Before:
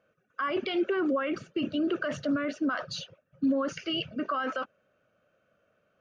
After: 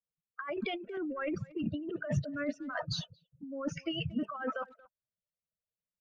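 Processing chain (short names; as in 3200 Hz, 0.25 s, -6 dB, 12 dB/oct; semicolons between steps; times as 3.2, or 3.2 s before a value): per-bin expansion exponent 2; high shelf 5000 Hz -12 dB; negative-ratio compressor -41 dBFS, ratio -1; speakerphone echo 0.23 s, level -21 dB; low-pass opened by the level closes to 650 Hz, open at -37 dBFS; low shelf 410 Hz +9.5 dB; 0.97–1.64 three-band squash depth 70%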